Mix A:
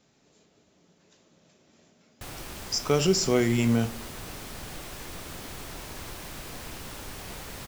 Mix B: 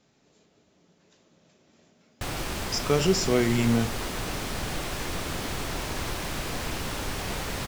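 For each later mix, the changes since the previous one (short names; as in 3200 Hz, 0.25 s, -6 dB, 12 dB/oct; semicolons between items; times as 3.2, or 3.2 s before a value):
background +9.0 dB; master: add high shelf 9400 Hz -8.5 dB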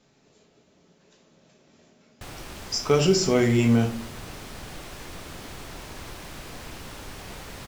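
speech: send +9.5 dB; background -8.0 dB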